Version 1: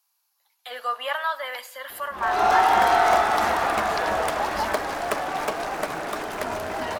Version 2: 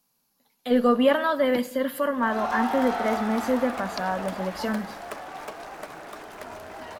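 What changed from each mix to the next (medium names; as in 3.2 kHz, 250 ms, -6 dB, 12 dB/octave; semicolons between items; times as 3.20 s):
speech: remove high-pass 800 Hz 24 dB/octave; background -10.5 dB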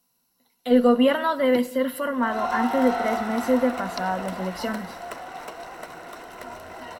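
master: add rippled EQ curve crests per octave 2, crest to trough 8 dB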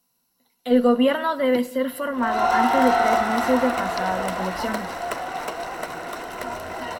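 background +7.5 dB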